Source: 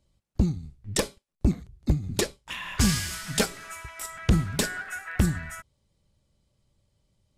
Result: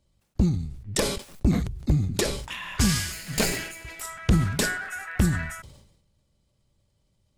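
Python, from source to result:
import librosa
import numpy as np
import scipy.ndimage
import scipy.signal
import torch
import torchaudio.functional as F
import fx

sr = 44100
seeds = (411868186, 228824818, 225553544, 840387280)

y = fx.lower_of_two(x, sr, delay_ms=0.42, at=(3.12, 4.01))
y = fx.sustainer(y, sr, db_per_s=62.0)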